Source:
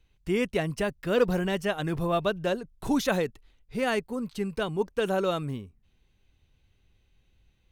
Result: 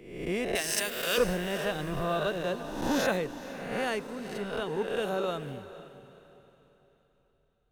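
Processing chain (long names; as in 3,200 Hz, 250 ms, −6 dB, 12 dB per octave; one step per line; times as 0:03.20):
peak hold with a rise ahead of every peak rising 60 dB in 1.11 s
0:00.55–0:01.18: spectral tilt +4.5 dB per octave
on a send: feedback delay with all-pass diffusion 473 ms, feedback 51%, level −11 dB
on the sum: multiband upward and downward expander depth 40%
level −6.5 dB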